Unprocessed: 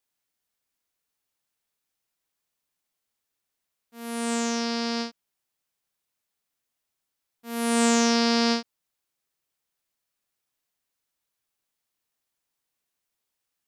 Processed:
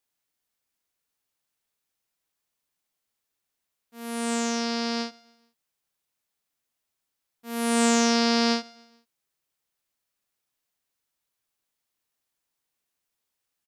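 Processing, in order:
repeating echo 143 ms, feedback 48%, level −24 dB

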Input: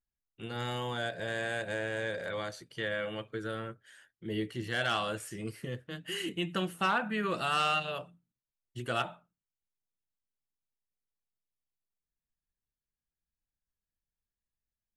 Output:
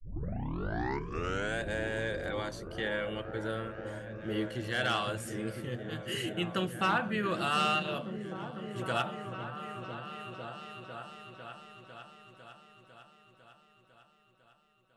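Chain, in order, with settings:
turntable start at the beginning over 1.60 s
echo whose low-pass opens from repeat to repeat 501 ms, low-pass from 200 Hz, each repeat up 1 octave, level −3 dB

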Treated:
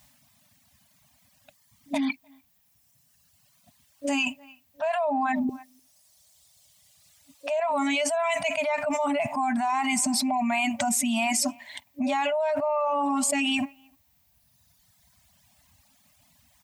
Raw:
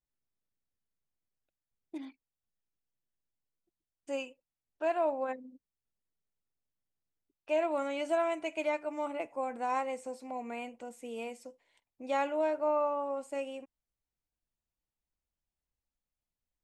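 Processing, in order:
high-pass filter 70 Hz 24 dB per octave
parametric band 1,400 Hz −7 dB 0.27 octaves
brick-wall band-stop 280–560 Hz
0:05.49–0:07.60: graphic EQ with 10 bands 125 Hz −4 dB, 250 Hz −8 dB, 500 Hz +10 dB, 4,000 Hz +4 dB, 8,000 Hz +7 dB
far-end echo of a speakerphone 300 ms, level −30 dB
reverb reduction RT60 1.7 s
envelope flattener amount 100%
level −4.5 dB

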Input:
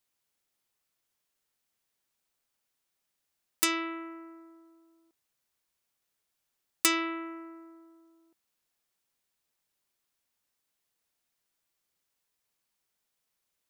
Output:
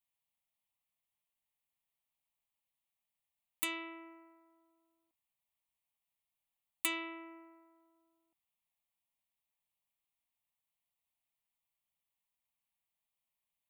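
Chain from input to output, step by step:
dynamic equaliser 310 Hz, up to +6 dB, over −49 dBFS, Q 1.2
phaser with its sweep stopped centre 1,500 Hz, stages 6
level −6.5 dB

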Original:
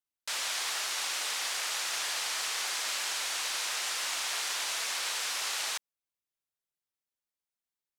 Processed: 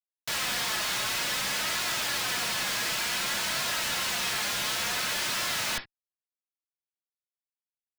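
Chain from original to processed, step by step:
high-pass filter 460 Hz 24 dB per octave
in parallel at −2.5 dB: brickwall limiter −31.5 dBFS, peak gain reduction 10 dB
on the sum: flanger 0.55 Hz, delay 2.8 ms, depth 2.2 ms, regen +9%
log-companded quantiser 4 bits
comparator with hysteresis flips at −45.5 dBFS
on a send at −3 dB: linear-phase brick-wall low-pass 5,500 Hz + convolution reverb, pre-delay 3 ms
on the sum: level +4.5 dB

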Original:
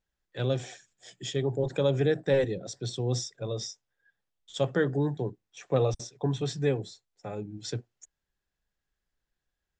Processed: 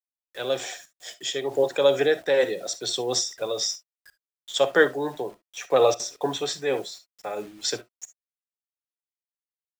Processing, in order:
high-pass filter 540 Hz 12 dB per octave
automatic gain control gain up to 14 dB
bit reduction 8 bits
convolution reverb, pre-delay 15 ms, DRR 13.5 dB
amplitude modulation by smooth noise, depth 65%

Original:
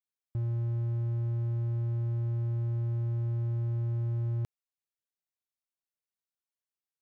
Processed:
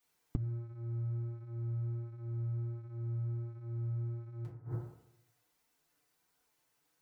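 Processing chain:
feedback delay network reverb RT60 0.85 s, low-frequency decay 0.9×, high-frequency decay 0.3×, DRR −6.5 dB
gate with flip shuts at −31 dBFS, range −29 dB
flanger 1.4 Hz, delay 4 ms, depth 3.2 ms, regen −30%
level +16.5 dB

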